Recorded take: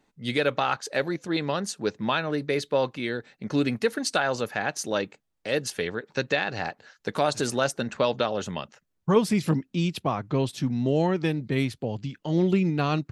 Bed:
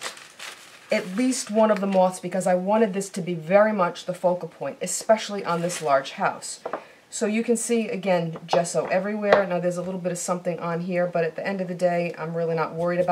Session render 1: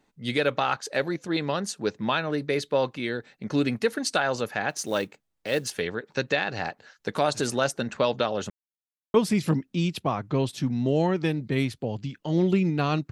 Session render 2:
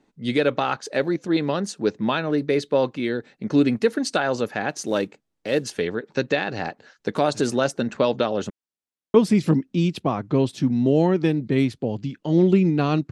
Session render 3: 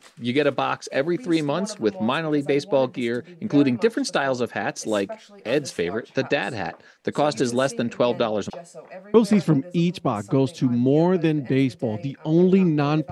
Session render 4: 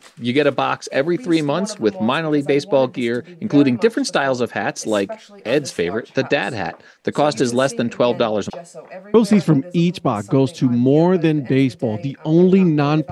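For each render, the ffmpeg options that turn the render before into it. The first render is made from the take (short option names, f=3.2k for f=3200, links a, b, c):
-filter_complex "[0:a]asplit=3[a][b][c];[a]afade=t=out:st=4.69:d=0.02[d];[b]acrusher=bits=6:mode=log:mix=0:aa=0.000001,afade=t=in:st=4.69:d=0.02,afade=t=out:st=5.78:d=0.02[e];[c]afade=t=in:st=5.78:d=0.02[f];[d][e][f]amix=inputs=3:normalize=0,asplit=3[g][h][i];[g]atrim=end=8.5,asetpts=PTS-STARTPTS,afade=t=out:st=8.496:d=0.004:c=hsin[j];[h]atrim=start=8.5:end=9.14,asetpts=PTS-STARTPTS,volume=0[k];[i]atrim=start=9.14,asetpts=PTS-STARTPTS,afade=t=in:d=0.004:c=hsin[l];[j][k][l]concat=n=3:v=0:a=1"
-af "lowpass=9.4k,equalizer=f=290:t=o:w=1.9:g=7"
-filter_complex "[1:a]volume=-17dB[a];[0:a][a]amix=inputs=2:normalize=0"
-af "volume=4.5dB,alimiter=limit=-3dB:level=0:latency=1"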